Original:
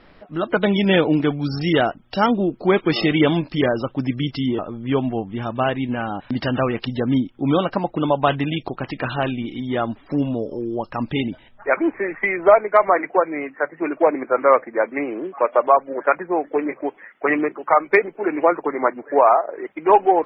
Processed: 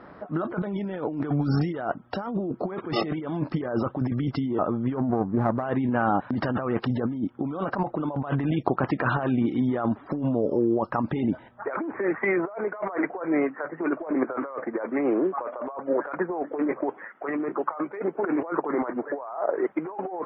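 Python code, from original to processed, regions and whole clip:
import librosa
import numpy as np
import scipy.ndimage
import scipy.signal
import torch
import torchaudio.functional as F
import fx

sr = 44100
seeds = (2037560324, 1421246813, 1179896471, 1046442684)

y = fx.chain(x, sr, fx.gaussian_blur(sigma=5.3),
    fx.running_max(window=9), at=(4.95, 5.63))
y = scipy.signal.sosfilt(scipy.signal.butter(2, 100.0, 'highpass', fs=sr, output='sos'), y)
y = fx.high_shelf_res(y, sr, hz=1900.0, db=-11.5, q=1.5)
y = fx.over_compress(y, sr, threshold_db=-26.0, ratio=-1.0)
y = y * librosa.db_to_amplitude(-1.5)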